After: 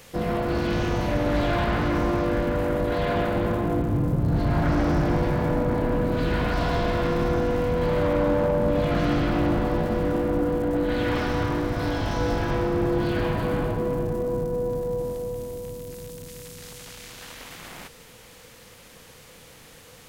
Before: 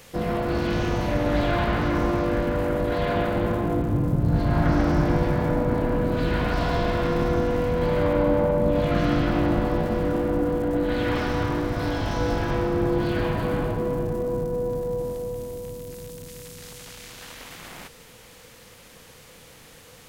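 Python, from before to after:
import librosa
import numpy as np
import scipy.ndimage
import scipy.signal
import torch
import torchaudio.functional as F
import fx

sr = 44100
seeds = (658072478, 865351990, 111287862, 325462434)

y = np.clip(x, -10.0 ** (-17.0 / 20.0), 10.0 ** (-17.0 / 20.0))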